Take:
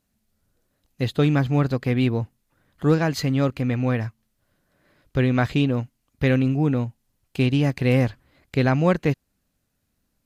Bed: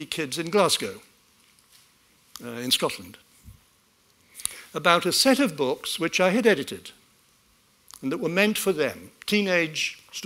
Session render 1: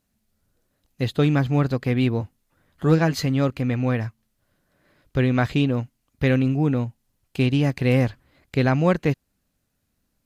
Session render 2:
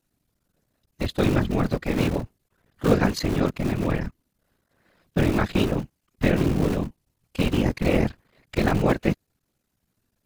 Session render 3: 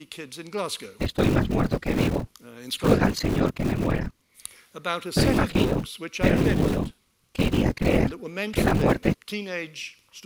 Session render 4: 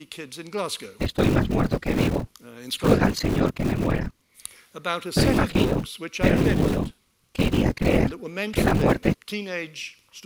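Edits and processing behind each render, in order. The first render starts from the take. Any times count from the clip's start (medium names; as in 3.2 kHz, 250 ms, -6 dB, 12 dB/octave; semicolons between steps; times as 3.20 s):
2.19–3.26 s: doubling 12 ms -7.5 dB
cycle switcher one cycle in 3, muted; whisper effect
add bed -9 dB
trim +1 dB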